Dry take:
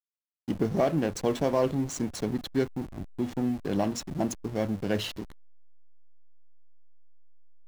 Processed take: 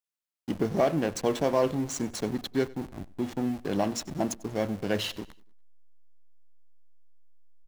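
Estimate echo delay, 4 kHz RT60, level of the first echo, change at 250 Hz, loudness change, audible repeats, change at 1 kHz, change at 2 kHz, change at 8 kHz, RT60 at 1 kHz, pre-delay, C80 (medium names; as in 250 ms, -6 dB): 96 ms, no reverb, -21.5 dB, -1.0 dB, 0.0 dB, 2, +1.5 dB, +2.0 dB, +2.0 dB, no reverb, no reverb, no reverb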